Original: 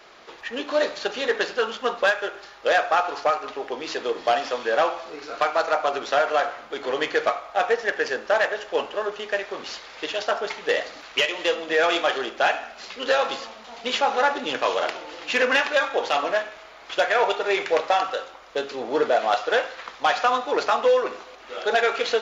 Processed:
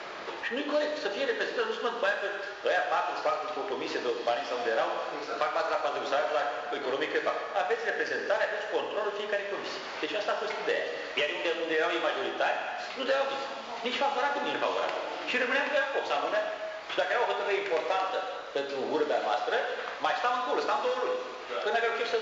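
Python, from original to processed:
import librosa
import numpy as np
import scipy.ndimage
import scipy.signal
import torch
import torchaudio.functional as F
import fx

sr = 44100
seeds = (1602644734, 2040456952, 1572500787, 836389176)

y = scipy.signal.sosfilt(scipy.signal.bessel(2, 6100.0, 'lowpass', norm='mag', fs=sr, output='sos'), x)
y = fx.rev_gated(y, sr, seeds[0], gate_ms=420, shape='falling', drr_db=2.5)
y = fx.band_squash(y, sr, depth_pct=70)
y = F.gain(torch.from_numpy(y), -8.5).numpy()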